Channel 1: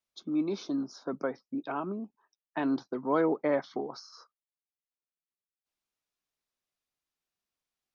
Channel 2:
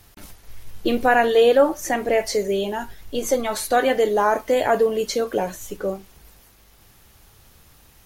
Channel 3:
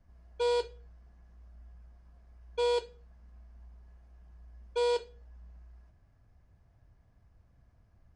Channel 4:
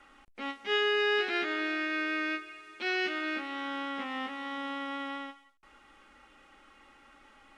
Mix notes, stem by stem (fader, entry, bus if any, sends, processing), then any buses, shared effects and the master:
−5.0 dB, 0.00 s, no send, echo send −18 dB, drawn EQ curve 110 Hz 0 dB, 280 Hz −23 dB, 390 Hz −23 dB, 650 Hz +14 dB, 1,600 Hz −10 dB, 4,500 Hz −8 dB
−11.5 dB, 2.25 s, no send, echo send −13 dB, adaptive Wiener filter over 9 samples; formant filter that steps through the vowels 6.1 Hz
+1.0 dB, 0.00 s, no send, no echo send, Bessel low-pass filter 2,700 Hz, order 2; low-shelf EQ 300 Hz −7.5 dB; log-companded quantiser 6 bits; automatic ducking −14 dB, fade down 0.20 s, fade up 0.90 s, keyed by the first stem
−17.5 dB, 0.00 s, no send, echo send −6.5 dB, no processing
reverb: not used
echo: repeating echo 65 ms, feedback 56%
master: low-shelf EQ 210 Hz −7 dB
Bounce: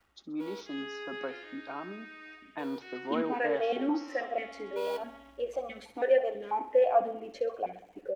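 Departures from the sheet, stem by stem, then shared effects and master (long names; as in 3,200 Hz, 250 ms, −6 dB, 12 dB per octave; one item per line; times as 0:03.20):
stem 1: missing drawn EQ curve 110 Hz 0 dB, 280 Hz −23 dB, 390 Hz −23 dB, 650 Hz +14 dB, 1,600 Hz −10 dB, 4,500 Hz −8 dB
stem 2 −11.5 dB → −0.5 dB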